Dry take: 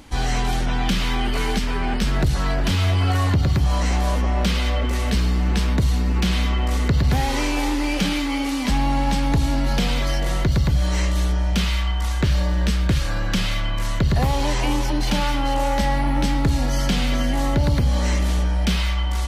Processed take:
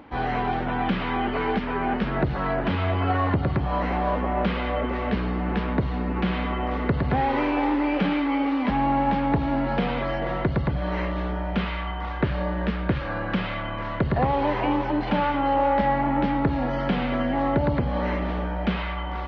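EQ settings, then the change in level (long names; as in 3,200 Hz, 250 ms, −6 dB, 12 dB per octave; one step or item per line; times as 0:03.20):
high-pass filter 530 Hz 6 dB per octave
high-frequency loss of the air 240 metres
head-to-tape spacing loss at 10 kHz 42 dB
+8.5 dB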